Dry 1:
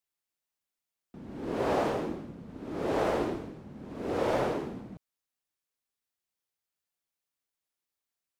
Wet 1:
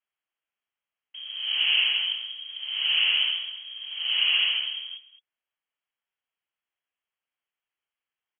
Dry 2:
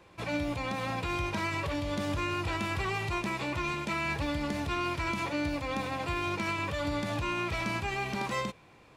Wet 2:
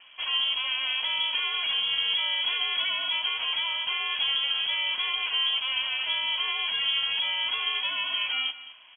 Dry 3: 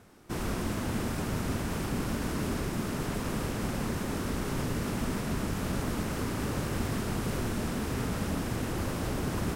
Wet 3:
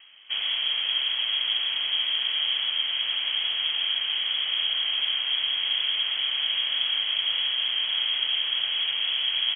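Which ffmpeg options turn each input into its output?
-filter_complex "[0:a]highpass=50,aemphasis=mode=reproduction:type=75fm,acrossover=split=300|990[a][b][c];[c]asoftclip=type=tanh:threshold=-39.5dB[d];[a][b][d]amix=inputs=3:normalize=0,aecho=1:1:214:0.158,lowpass=f=2.9k:t=q:w=0.5098,lowpass=f=2.9k:t=q:w=0.6013,lowpass=f=2.9k:t=q:w=0.9,lowpass=f=2.9k:t=q:w=2.563,afreqshift=-3400,volume=5dB"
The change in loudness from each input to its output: +8.5, +7.0, +9.0 LU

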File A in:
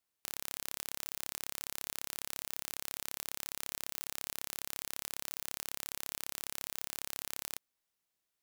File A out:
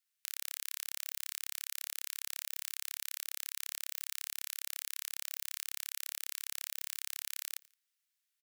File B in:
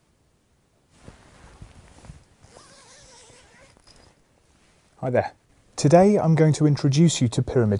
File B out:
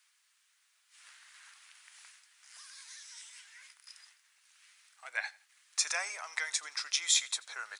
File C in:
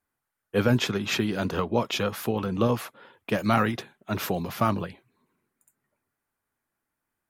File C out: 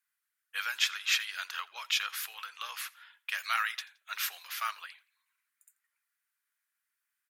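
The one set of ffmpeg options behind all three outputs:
-af "highpass=f=1.5k:w=0.5412,highpass=f=1.5k:w=1.3066,aecho=1:1:85|170:0.0708|0.0248,volume=1dB"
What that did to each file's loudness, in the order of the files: +1.0, -13.0, -6.5 LU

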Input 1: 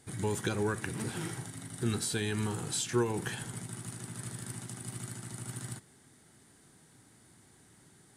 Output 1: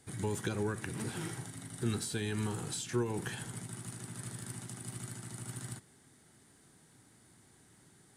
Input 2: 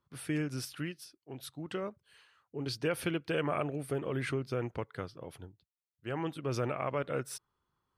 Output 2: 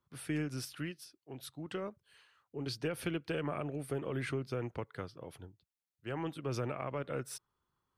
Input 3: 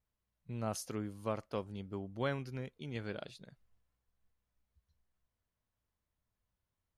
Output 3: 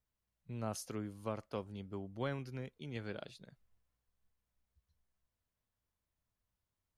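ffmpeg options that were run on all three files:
-filter_complex "[0:a]acrossover=split=350[a][b];[b]acompressor=threshold=-34dB:ratio=6[c];[a][c]amix=inputs=2:normalize=0,aeval=exprs='0.112*(cos(1*acos(clip(val(0)/0.112,-1,1)))-cos(1*PI/2))+0.00251*(cos(4*acos(clip(val(0)/0.112,-1,1)))-cos(4*PI/2))':c=same,volume=-2dB"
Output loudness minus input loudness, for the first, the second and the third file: -3.0, -3.0, -2.5 LU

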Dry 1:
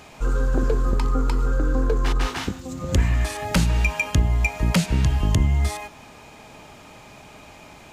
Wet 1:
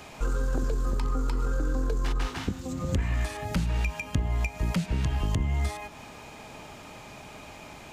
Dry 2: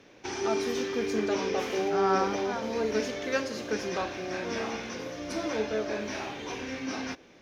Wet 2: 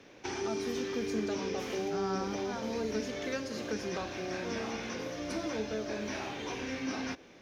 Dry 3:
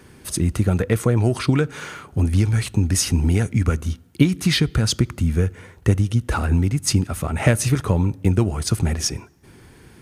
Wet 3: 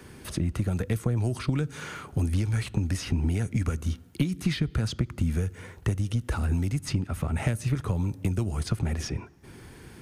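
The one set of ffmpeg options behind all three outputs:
-filter_complex "[0:a]acrossover=split=260|3800[a][b][c];[a]acompressor=threshold=-25dB:ratio=4[d];[b]acompressor=threshold=-36dB:ratio=4[e];[c]acompressor=threshold=-47dB:ratio=4[f];[d][e][f]amix=inputs=3:normalize=0,aeval=exprs='0.237*(cos(1*acos(clip(val(0)/0.237,-1,1)))-cos(1*PI/2))+0.0211*(cos(4*acos(clip(val(0)/0.237,-1,1)))-cos(4*PI/2))+0.00841*(cos(6*acos(clip(val(0)/0.237,-1,1)))-cos(6*PI/2))':c=same"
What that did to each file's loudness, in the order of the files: -7.0, -5.0, -8.5 LU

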